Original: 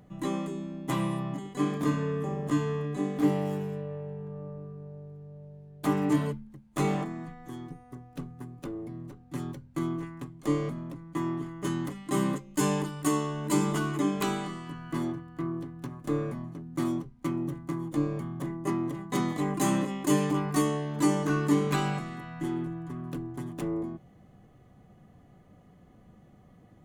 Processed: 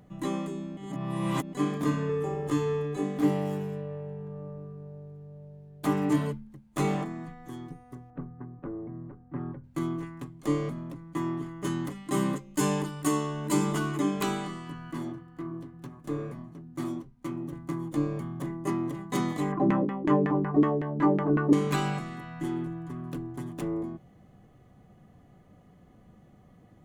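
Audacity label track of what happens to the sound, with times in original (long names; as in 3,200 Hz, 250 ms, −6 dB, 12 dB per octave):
0.770000	1.530000	reverse
2.090000	3.030000	comb filter 2.3 ms
8.100000	9.640000	low-pass filter 1,700 Hz 24 dB per octave
14.910000	17.530000	flanger 1.9 Hz, delay 2.9 ms, depth 6.5 ms, regen −58%
19.520000	21.530000	auto-filter low-pass saw down 5.4 Hz 260–2,000 Hz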